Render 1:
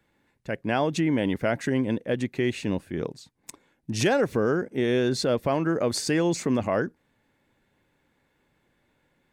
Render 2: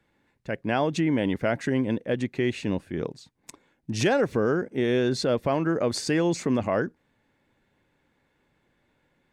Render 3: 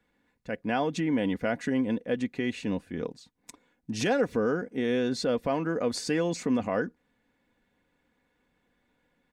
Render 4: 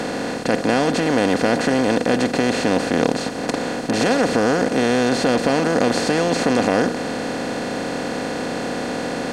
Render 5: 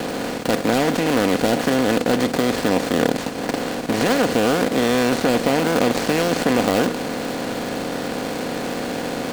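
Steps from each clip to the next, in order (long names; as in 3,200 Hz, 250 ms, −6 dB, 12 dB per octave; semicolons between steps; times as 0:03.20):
high-shelf EQ 11,000 Hz −11.5 dB
comb filter 4.1 ms, depth 47%; level −4 dB
compressor on every frequency bin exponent 0.2; level +2 dB
gap after every zero crossing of 0.23 ms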